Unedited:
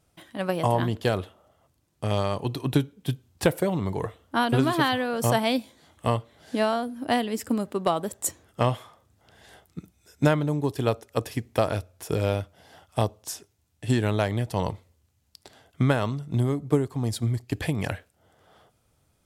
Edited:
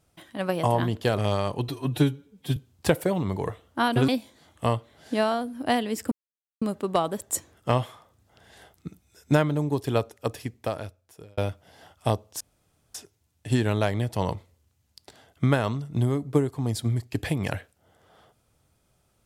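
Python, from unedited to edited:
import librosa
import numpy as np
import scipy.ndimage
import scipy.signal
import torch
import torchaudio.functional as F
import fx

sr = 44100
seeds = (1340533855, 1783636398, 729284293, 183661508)

y = fx.edit(x, sr, fx.cut(start_s=1.18, length_s=0.86),
    fx.stretch_span(start_s=2.54, length_s=0.59, factor=1.5),
    fx.cut(start_s=4.65, length_s=0.85),
    fx.insert_silence(at_s=7.53, length_s=0.5),
    fx.fade_out_span(start_s=10.88, length_s=1.41),
    fx.insert_room_tone(at_s=13.32, length_s=0.54), tone=tone)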